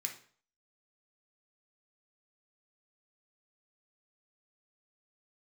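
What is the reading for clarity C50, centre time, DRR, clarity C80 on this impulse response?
9.0 dB, 16 ms, 2.0 dB, 14.5 dB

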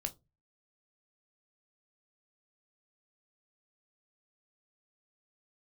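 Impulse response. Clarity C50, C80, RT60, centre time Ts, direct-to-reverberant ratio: 21.0 dB, 30.0 dB, 0.25 s, 6 ms, 6.0 dB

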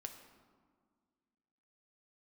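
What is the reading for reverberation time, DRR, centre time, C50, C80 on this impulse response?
1.8 s, 4.5 dB, 25 ms, 8.0 dB, 9.5 dB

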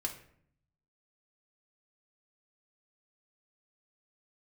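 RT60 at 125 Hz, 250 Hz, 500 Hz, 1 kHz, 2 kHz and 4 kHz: 1.2 s, 0.90 s, 0.65 s, 0.60 s, 0.55 s, 0.40 s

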